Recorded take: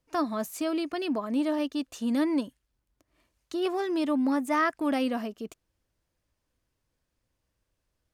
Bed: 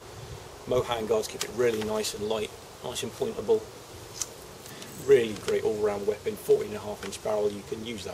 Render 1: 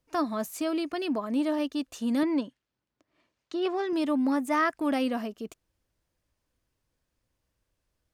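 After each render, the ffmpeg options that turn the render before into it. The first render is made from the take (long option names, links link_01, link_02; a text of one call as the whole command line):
ffmpeg -i in.wav -filter_complex "[0:a]asettb=1/sr,asplit=3[link_01][link_02][link_03];[link_01]atrim=end=2.234[link_04];[link_02]atrim=start=2.23:end=3.93,asetpts=PTS-STARTPTS,afade=type=in:duration=0.004:curve=qsin,afade=type=out:start_time=1.696:duration=0.004:curve=qsin,highpass=140,lowpass=5100[link_05];[link_03]atrim=start=3.926[link_06];[link_04][link_05]acrossfade=duration=0.004:curve1=hsin:curve2=qsin[link_07];[link_07][link_06]acrossfade=duration=0.004:curve1=qsin:curve2=hsin" out.wav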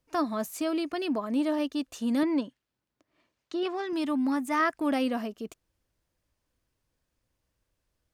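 ffmpeg -i in.wav -filter_complex "[0:a]asettb=1/sr,asplit=3[link_01][link_02][link_03];[link_01]atrim=end=3.634[link_04];[link_02]atrim=start=3.63:end=4.6,asetpts=PTS-STARTPTS,afade=type=in:duration=0.004:curve=qsin,afade=type=out:start_time=0.966:duration=0.004:curve=qsin,equalizer=frequency=500:width_type=o:width=0.77:gain=-8[link_05];[link_03]atrim=start=4.596[link_06];[link_04][link_05]acrossfade=duration=0.004:curve1=hsin:curve2=qsin[link_07];[link_07][link_06]acrossfade=duration=0.004:curve1=qsin:curve2=hsin" out.wav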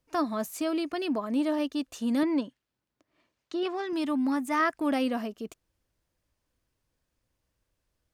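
ffmpeg -i in.wav -af anull out.wav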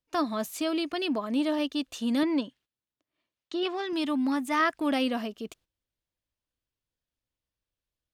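ffmpeg -i in.wav -af "agate=range=-13dB:threshold=-57dB:ratio=16:detection=peak,equalizer=frequency=3400:width=1.4:gain=7" out.wav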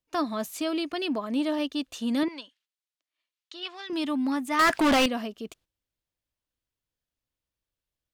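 ffmpeg -i in.wav -filter_complex "[0:a]asettb=1/sr,asplit=3[link_01][link_02][link_03];[link_01]atrim=end=2.284[link_04];[link_02]atrim=start=2.28:end=3.9,asetpts=PTS-STARTPTS,afade=type=in:duration=0.004:curve=qsin,afade=type=out:start_time=1.616:duration=0.004:curve=qsin,bandpass=frequency=4400:width_type=q:width=0.5[link_05];[link_03]atrim=start=3.896[link_06];[link_04][link_05]acrossfade=duration=0.004:curve1=hsin:curve2=qsin[link_07];[link_07][link_06]acrossfade=duration=0.004:curve1=qsin:curve2=hsin,asettb=1/sr,asplit=3[link_08][link_09][link_10];[link_08]atrim=end=4.594[link_11];[link_09]atrim=start=4.59:end=5.06,asetpts=PTS-STARTPTS,afade=type=in:duration=0.004:curve=qsin,afade=type=out:start_time=0.466:duration=0.004:curve=qsin,asplit=2[link_12][link_13];[link_13]highpass=frequency=720:poles=1,volume=33dB,asoftclip=type=tanh:threshold=-14.5dB[link_14];[link_12][link_14]amix=inputs=2:normalize=0,lowpass=frequency=4300:poles=1,volume=-6dB[link_15];[link_10]atrim=start=5.056[link_16];[link_11][link_15]acrossfade=duration=0.004:curve1=hsin:curve2=qsin[link_17];[link_17][link_16]acrossfade=duration=0.004:curve1=qsin:curve2=hsin" out.wav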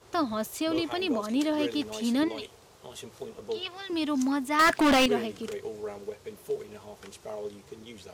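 ffmpeg -i in.wav -i bed.wav -filter_complex "[1:a]volume=-10dB[link_01];[0:a][link_01]amix=inputs=2:normalize=0" out.wav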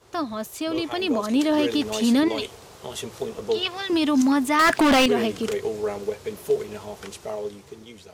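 ffmpeg -i in.wav -af "dynaudnorm=framelen=360:gausssize=7:maxgain=10dB,alimiter=limit=-12.5dB:level=0:latency=1:release=62" out.wav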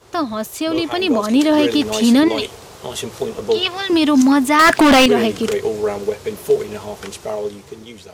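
ffmpeg -i in.wav -af "volume=7dB" out.wav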